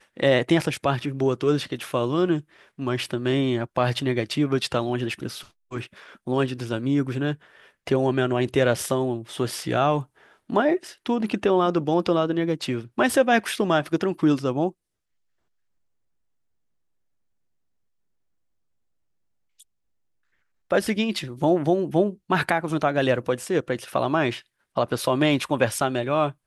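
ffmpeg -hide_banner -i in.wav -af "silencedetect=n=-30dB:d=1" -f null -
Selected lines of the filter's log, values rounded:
silence_start: 14.69
silence_end: 20.71 | silence_duration: 6.01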